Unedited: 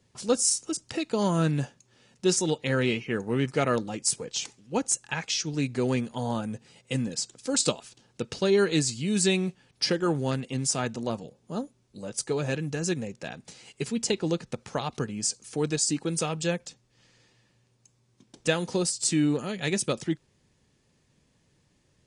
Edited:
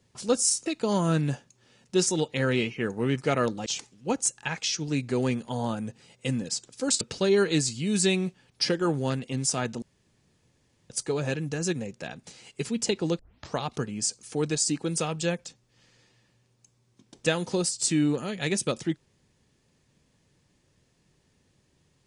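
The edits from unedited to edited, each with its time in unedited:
0:00.66–0:00.96: remove
0:03.96–0:04.32: remove
0:07.67–0:08.22: remove
0:11.03–0:12.11: fill with room tone
0:14.40: tape start 0.36 s

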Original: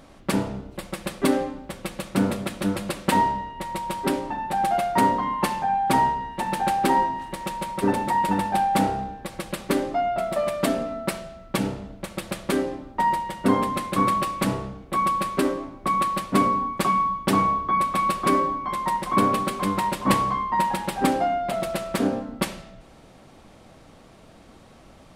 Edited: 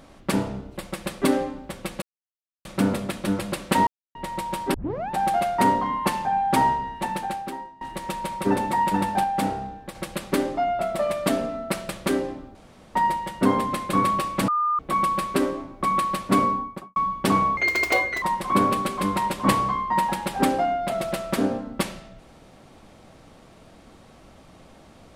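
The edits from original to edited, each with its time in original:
0:02.02: splice in silence 0.63 s
0:03.24–0:03.52: silence
0:04.11: tape start 0.36 s
0:06.42–0:07.18: fade out quadratic, to −21.5 dB
0:08.61–0:09.32: clip gain −3.5 dB
0:11.26–0:12.32: remove
0:12.98: splice in room tone 0.40 s
0:14.51–0:14.82: beep over 1,210 Hz −19.5 dBFS
0:16.49–0:16.99: fade out and dull
0:17.60–0:18.84: play speed 190%

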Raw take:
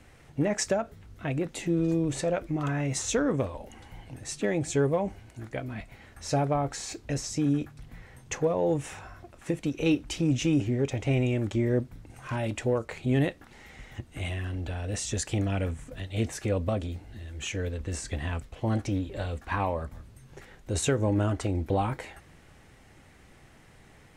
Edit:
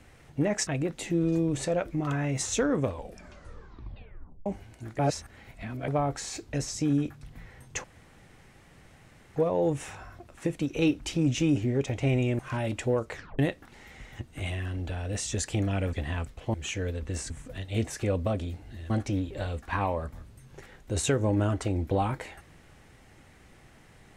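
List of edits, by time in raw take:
0:00.67–0:01.23: remove
0:03.47: tape stop 1.55 s
0:05.55–0:06.44: reverse
0:08.40: splice in room tone 1.52 s
0:11.43–0:12.18: remove
0:12.92: tape stop 0.26 s
0:15.72–0:17.32: swap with 0:18.08–0:18.69

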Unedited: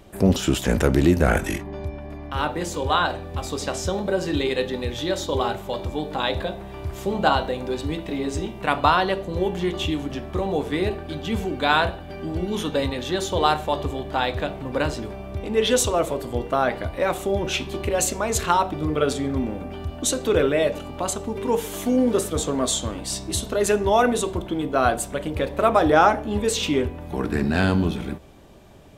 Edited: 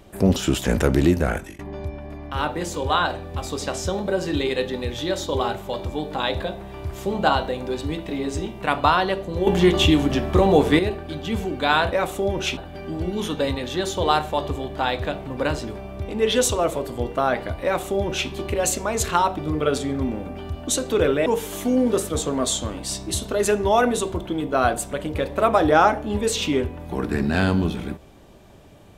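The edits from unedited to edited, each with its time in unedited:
0:01.07–0:01.59: fade out linear, to −23.5 dB
0:09.47–0:10.79: clip gain +8.5 dB
0:16.99–0:17.64: duplicate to 0:11.92
0:20.61–0:21.47: remove

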